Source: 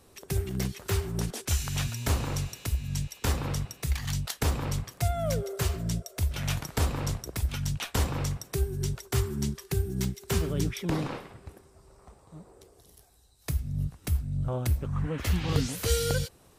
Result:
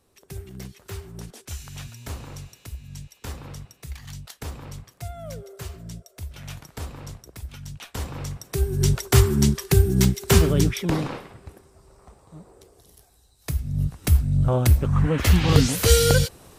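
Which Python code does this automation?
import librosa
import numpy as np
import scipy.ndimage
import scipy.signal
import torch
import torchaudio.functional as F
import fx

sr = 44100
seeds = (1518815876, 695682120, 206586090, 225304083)

y = fx.gain(x, sr, db=fx.line((7.65, -7.5), (8.35, -1.0), (8.9, 11.5), (10.38, 11.5), (11.14, 3.0), (13.52, 3.0), (14.12, 10.0)))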